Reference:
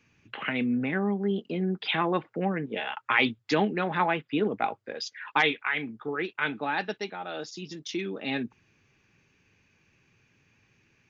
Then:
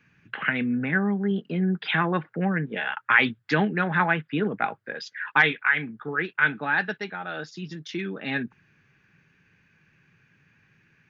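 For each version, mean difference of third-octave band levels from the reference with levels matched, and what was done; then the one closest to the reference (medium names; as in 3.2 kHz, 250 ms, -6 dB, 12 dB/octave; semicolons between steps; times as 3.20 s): 2.5 dB: fifteen-band graphic EQ 160 Hz +10 dB, 1.6 kHz +12 dB, 6.3 kHz -5 dB; trim -1.5 dB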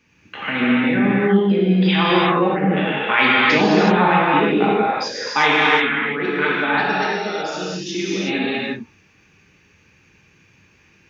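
9.0 dB: gated-style reverb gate 400 ms flat, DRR -7.5 dB; trim +3.5 dB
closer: first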